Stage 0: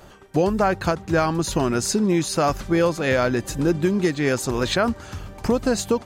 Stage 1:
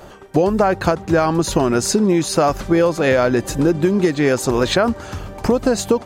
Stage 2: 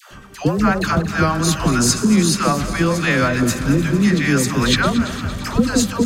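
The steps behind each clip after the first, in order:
parametric band 550 Hz +5 dB 2.3 octaves; downward compressor, threshold −15 dBFS, peak gain reduction 5 dB; level +4 dB
feedback delay that plays each chunk backwards 114 ms, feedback 81%, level −13 dB; flat-topped bell 550 Hz −11 dB; all-pass dispersion lows, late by 113 ms, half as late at 680 Hz; level +3.5 dB

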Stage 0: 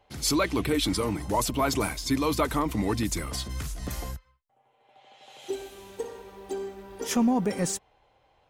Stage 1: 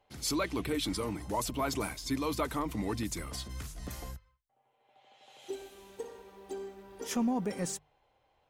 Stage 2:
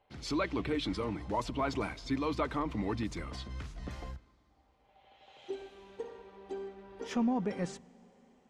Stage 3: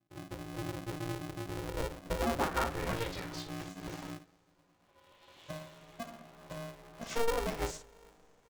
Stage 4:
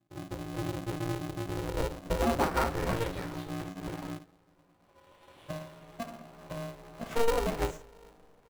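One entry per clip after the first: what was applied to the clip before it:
mains-hum notches 50/100/150 Hz; level −7 dB
low-pass filter 3,600 Hz 12 dB per octave; on a send at −23.5 dB: convolution reverb RT60 4.8 s, pre-delay 39 ms
ambience of single reflections 17 ms −4 dB, 56 ms −8 dB; low-pass filter sweep 110 Hz → 7,500 Hz, 0:01.42–0:03.44; ring modulator with a square carrier 230 Hz; level −3.5 dB
running median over 9 samples; in parallel at −8 dB: sample-rate reduction 3,400 Hz; on the sum: level +2 dB

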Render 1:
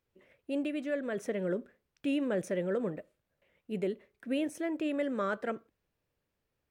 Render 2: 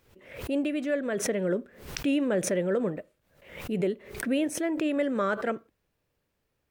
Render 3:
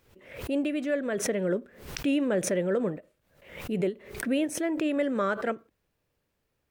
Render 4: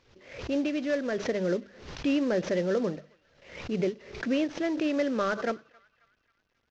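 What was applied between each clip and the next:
background raised ahead of every attack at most 93 dB per second; level +5 dB
every ending faded ahead of time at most 320 dB per second
variable-slope delta modulation 32 kbit/s; mains-hum notches 50/100/150/200 Hz; feedback echo with a band-pass in the loop 270 ms, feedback 55%, band-pass 2,300 Hz, level −23.5 dB

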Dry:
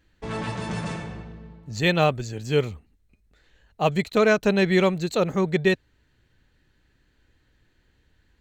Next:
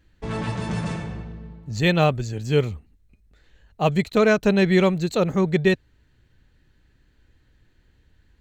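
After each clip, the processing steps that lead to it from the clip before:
low-shelf EQ 220 Hz +6 dB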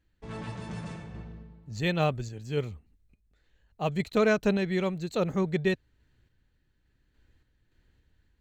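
sample-and-hold tremolo
level −5.5 dB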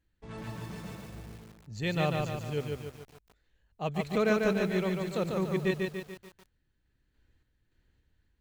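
feedback echo at a low word length 145 ms, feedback 55%, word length 8 bits, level −3 dB
level −4 dB

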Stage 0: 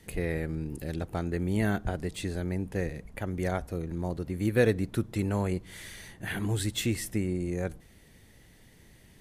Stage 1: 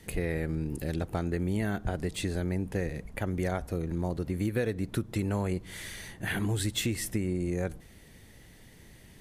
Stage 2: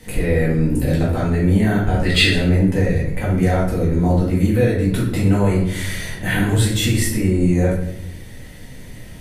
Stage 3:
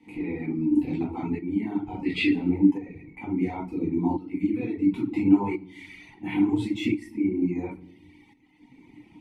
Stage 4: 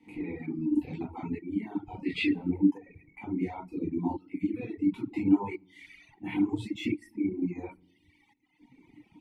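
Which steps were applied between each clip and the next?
downward compressor 6 to 1, threshold −29 dBFS, peak gain reduction 11 dB; level +3 dB
brickwall limiter −23 dBFS, peak gain reduction 6 dB; gain on a spectral selection 0:02.05–0:02.31, 1,200–5,200 Hz +12 dB; rectangular room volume 160 cubic metres, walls mixed, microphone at 2 metres; level +6 dB
shaped tremolo saw up 0.72 Hz, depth 55%; reverb reduction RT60 1.5 s; formant filter u; level +8 dB
reverb reduction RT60 1.3 s; level −4 dB

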